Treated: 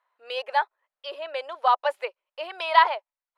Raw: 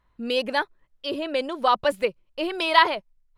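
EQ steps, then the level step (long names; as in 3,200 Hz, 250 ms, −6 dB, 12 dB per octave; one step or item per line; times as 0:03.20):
low-pass filter 1,900 Hz 6 dB per octave
dynamic equaliser 860 Hz, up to +6 dB, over −40 dBFS, Q 5.1
inverse Chebyshev high-pass filter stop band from 230 Hz, stop band 50 dB
0.0 dB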